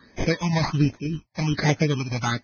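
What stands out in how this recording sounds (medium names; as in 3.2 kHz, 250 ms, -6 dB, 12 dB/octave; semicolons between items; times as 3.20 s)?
tremolo saw down 1.9 Hz, depth 50%; aliases and images of a low sample rate 2.8 kHz, jitter 0%; phasing stages 8, 1.3 Hz, lowest notch 390–1300 Hz; Vorbis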